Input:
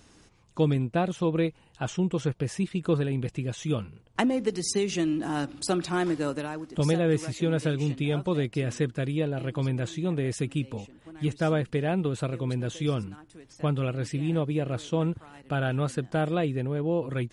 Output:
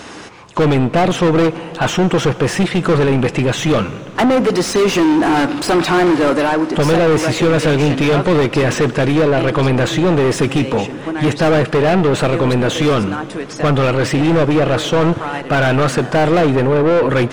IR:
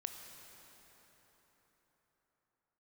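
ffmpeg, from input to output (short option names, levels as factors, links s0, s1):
-filter_complex "[0:a]asplit=2[s0][s1];[s1]highpass=f=720:p=1,volume=56.2,asoftclip=type=tanh:threshold=0.422[s2];[s0][s2]amix=inputs=2:normalize=0,lowpass=f=1600:p=1,volume=0.501,asplit=2[s3][s4];[1:a]atrim=start_sample=2205[s5];[s4][s5]afir=irnorm=-1:irlink=0,volume=0.596[s6];[s3][s6]amix=inputs=2:normalize=0"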